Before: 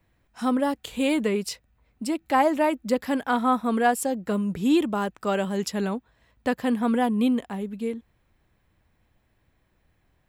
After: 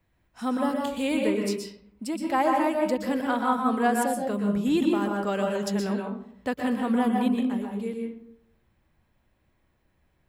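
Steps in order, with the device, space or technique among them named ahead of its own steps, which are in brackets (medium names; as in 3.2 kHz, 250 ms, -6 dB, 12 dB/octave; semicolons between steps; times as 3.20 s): bathroom (reverberation RT60 0.65 s, pre-delay 115 ms, DRR 1 dB); trim -4 dB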